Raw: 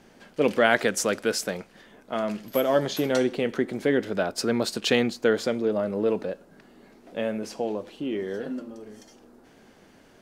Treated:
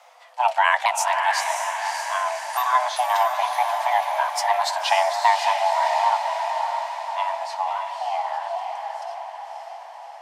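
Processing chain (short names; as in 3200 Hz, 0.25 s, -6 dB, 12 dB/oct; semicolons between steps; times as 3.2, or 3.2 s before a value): repeated pitch sweeps -5.5 st, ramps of 0.856 s; diffused feedback echo 0.582 s, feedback 58%, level -4.5 dB; frequency shift +490 Hz; gain +3 dB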